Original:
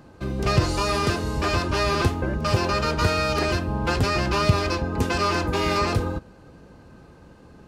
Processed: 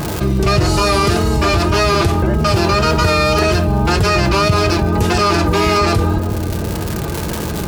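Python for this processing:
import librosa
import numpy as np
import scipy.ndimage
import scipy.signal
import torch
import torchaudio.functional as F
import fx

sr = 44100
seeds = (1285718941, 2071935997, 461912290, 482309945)

y = fx.dmg_crackle(x, sr, seeds[0], per_s=170.0, level_db=-37.0)
y = fx.high_shelf(y, sr, hz=11000.0, db=6.0)
y = fx.notch_comb(y, sr, f0_hz=260.0)
y = fx.echo_filtered(y, sr, ms=177, feedback_pct=62, hz=1000.0, wet_db=-15.5)
y = fx.vibrato(y, sr, rate_hz=1.8, depth_cents=38.0)
y = fx.env_flatten(y, sr, amount_pct=70)
y = y * librosa.db_to_amplitude(3.0)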